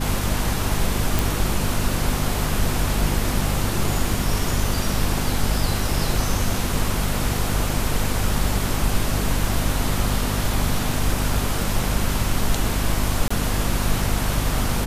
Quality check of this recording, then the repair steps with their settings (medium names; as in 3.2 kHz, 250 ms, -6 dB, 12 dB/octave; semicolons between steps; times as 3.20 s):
hum 50 Hz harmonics 5 -26 dBFS
1.19 s: pop
13.28–13.30 s: dropout 25 ms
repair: de-click; de-hum 50 Hz, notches 5; interpolate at 13.28 s, 25 ms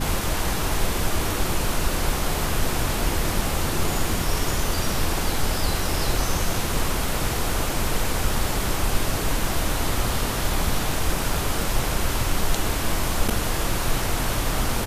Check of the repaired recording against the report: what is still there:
nothing left